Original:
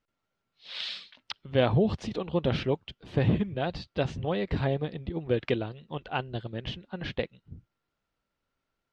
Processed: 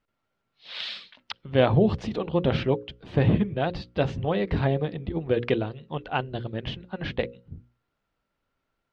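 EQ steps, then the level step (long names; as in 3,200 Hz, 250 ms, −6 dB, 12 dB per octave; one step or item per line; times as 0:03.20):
high-shelf EQ 5,600 Hz −11.5 dB
mains-hum notches 60/120/180/240/300/360/420/480/540 Hz
+4.5 dB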